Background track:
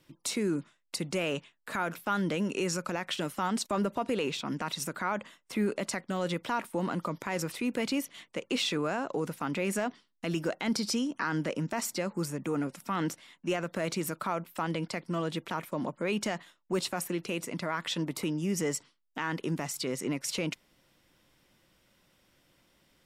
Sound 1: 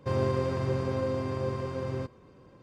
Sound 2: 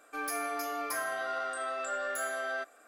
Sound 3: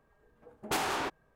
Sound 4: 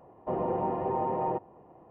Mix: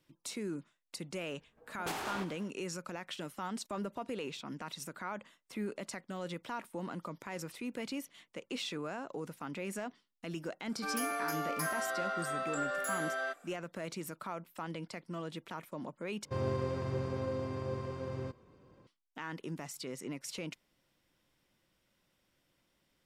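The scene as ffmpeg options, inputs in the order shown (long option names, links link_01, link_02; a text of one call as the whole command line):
ffmpeg -i bed.wav -i cue0.wav -i cue1.wav -i cue2.wav -filter_complex "[0:a]volume=-9dB[link_01];[3:a]aecho=1:1:103|206|309|412|515:0.2|0.106|0.056|0.0297|0.0157[link_02];[link_01]asplit=2[link_03][link_04];[link_03]atrim=end=16.254[link_05];[1:a]atrim=end=2.62,asetpts=PTS-STARTPTS,volume=-6.5dB[link_06];[link_04]atrim=start=18.866[link_07];[link_02]atrim=end=1.35,asetpts=PTS-STARTPTS,volume=-7.5dB,afade=type=in:duration=0.004:curve=hsin,afade=type=out:start_time=1.346:duration=0.004:curve=hsin,adelay=1150[link_08];[2:a]atrim=end=2.87,asetpts=PTS-STARTPTS,volume=-1.5dB,afade=type=in:duration=0.004:curve=hsin,afade=type=out:start_time=2.866:duration=0.004:curve=hsin,adelay=10690[link_09];[link_05][link_06]acrossfade=duration=0.004:curve1=hsin:curve2=hsin[link_10];[link_10][link_07]acrossfade=duration=0.004:curve1=hsin:curve2=hsin[link_11];[link_11][link_08][link_09]amix=inputs=3:normalize=0" out.wav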